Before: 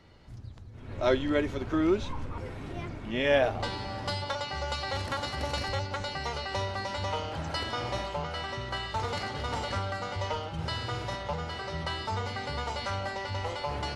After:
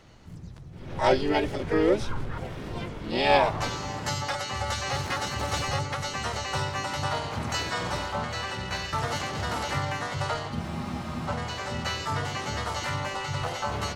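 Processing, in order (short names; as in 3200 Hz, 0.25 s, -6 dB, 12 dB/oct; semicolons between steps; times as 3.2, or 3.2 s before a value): harmoniser +5 st -4 dB, +7 st -2 dB; spectral freeze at 10.63, 0.64 s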